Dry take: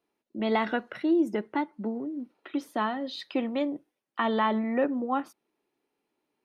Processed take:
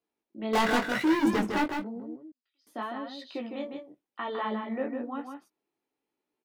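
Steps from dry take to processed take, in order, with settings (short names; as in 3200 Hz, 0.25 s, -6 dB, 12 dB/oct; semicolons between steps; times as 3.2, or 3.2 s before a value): 0.53–1.66 sample leveller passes 5; chorus 0.93 Hz, delay 15.5 ms, depth 7.5 ms; 2.16–2.67 band-pass 4800 Hz, Q 18; on a send: echo 0.156 s -6 dB; on the sum: gain -4 dB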